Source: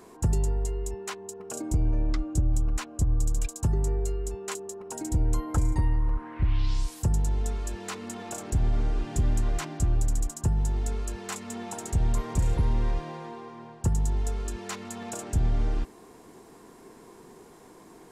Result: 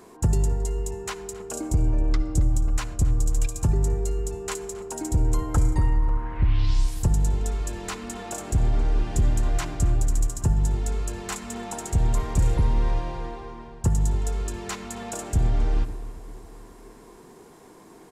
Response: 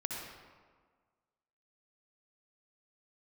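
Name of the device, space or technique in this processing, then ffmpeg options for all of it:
keyed gated reverb: -filter_complex "[0:a]asplit=3[link_01][link_02][link_03];[1:a]atrim=start_sample=2205[link_04];[link_02][link_04]afir=irnorm=-1:irlink=0[link_05];[link_03]apad=whole_len=798896[link_06];[link_05][link_06]sidechaingate=range=-33dB:threshold=-42dB:ratio=16:detection=peak,volume=-11.5dB[link_07];[link_01][link_07]amix=inputs=2:normalize=0,asplit=2[link_08][link_09];[link_09]adelay=270,lowpass=frequency=3600:poles=1,volume=-16dB,asplit=2[link_10][link_11];[link_11]adelay=270,lowpass=frequency=3600:poles=1,volume=0.55,asplit=2[link_12][link_13];[link_13]adelay=270,lowpass=frequency=3600:poles=1,volume=0.55,asplit=2[link_14][link_15];[link_15]adelay=270,lowpass=frequency=3600:poles=1,volume=0.55,asplit=2[link_16][link_17];[link_17]adelay=270,lowpass=frequency=3600:poles=1,volume=0.55[link_18];[link_08][link_10][link_12][link_14][link_16][link_18]amix=inputs=6:normalize=0,volume=1.5dB"

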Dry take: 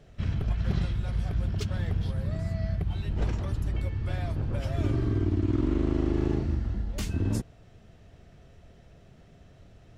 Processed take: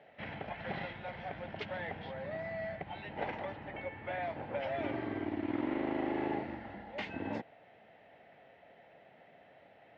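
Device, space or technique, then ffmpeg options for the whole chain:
phone earpiece: -filter_complex "[0:a]highpass=370,equalizer=frequency=380:width_type=q:width=4:gain=-6,equalizer=frequency=560:width_type=q:width=4:gain=4,equalizer=frequency=820:width_type=q:width=4:gain=10,equalizer=frequency=1200:width_type=q:width=4:gain=-6,equalizer=frequency=2000:width_type=q:width=4:gain=8,lowpass=frequency=3100:width=0.5412,lowpass=frequency=3100:width=1.3066,asettb=1/sr,asplit=3[link_01][link_02][link_03];[link_01]atrim=end=3.544[link_04];[link_02]atrim=start=3.54:end=4.23,asetpts=PTS-STARTPTS,afade=type=in:duration=0.004:curve=qsin,afade=type=out:start_time=0.686:duration=0.004:curve=qsin,lowpass=3500[link_05];[link_03]atrim=start=4.226[link_06];[link_04][link_05]acrossfade=duration=0.004:curve1=hsin:curve2=qsin[link_07];[link_07][link_06]acrossfade=duration=0.004:curve1=qsin:curve2=hsin"

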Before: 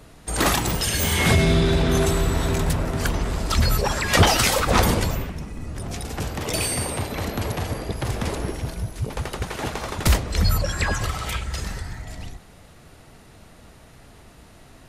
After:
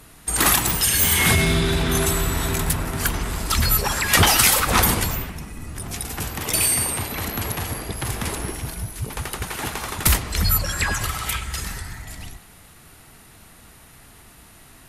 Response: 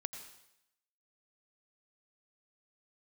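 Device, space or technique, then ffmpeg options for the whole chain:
filtered reverb send: -filter_complex "[0:a]equalizer=frequency=12000:width_type=o:width=1.2:gain=15,asplit=2[link_01][link_02];[link_02]highpass=frequency=550:width=0.5412,highpass=frequency=550:width=1.3066,lowpass=3800[link_03];[1:a]atrim=start_sample=2205[link_04];[link_03][link_04]afir=irnorm=-1:irlink=0,volume=-2.5dB[link_05];[link_01][link_05]amix=inputs=2:normalize=0,volume=-2dB"

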